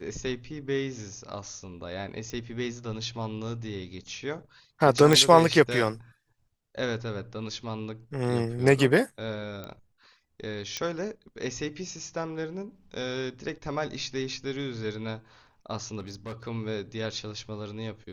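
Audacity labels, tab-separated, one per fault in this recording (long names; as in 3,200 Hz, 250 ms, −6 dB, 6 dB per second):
2.300000	2.300000	click −24 dBFS
5.130000	5.130000	click −7 dBFS
9.640000	9.640000	click −23 dBFS
10.770000	10.770000	click −16 dBFS
15.990000	16.480000	clipping −33.5 dBFS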